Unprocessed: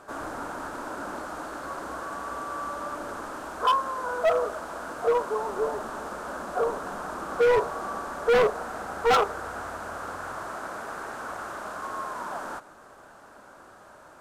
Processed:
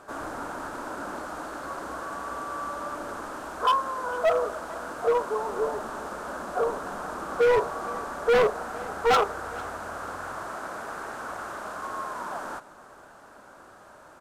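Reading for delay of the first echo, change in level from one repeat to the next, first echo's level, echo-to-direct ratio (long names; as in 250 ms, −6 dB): 451 ms, repeats not evenly spaced, −22.0 dB, −22.0 dB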